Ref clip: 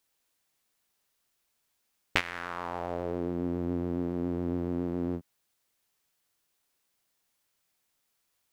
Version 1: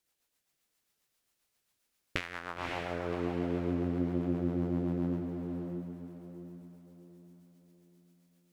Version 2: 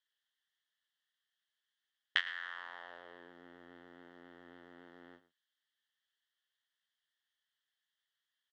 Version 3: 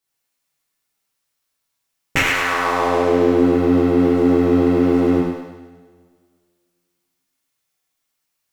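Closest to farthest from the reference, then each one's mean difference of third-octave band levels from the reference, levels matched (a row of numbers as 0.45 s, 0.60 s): 1, 3, 2; 3.0 dB, 4.5 dB, 8.0 dB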